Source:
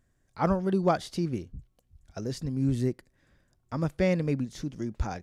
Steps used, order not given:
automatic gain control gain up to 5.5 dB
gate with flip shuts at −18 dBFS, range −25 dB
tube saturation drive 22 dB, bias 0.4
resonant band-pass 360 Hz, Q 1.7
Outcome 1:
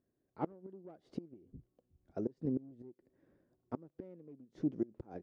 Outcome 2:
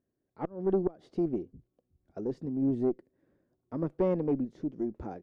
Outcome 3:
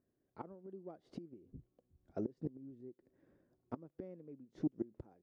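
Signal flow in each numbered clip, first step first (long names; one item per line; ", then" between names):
tube saturation, then automatic gain control, then gate with flip, then resonant band-pass
resonant band-pass, then gate with flip, then tube saturation, then automatic gain control
automatic gain control, then gate with flip, then tube saturation, then resonant band-pass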